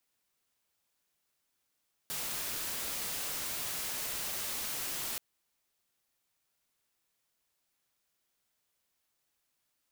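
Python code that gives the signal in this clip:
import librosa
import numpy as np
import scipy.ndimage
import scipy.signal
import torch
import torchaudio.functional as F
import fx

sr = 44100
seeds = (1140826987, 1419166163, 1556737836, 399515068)

y = fx.noise_colour(sr, seeds[0], length_s=3.08, colour='white', level_db=-37.0)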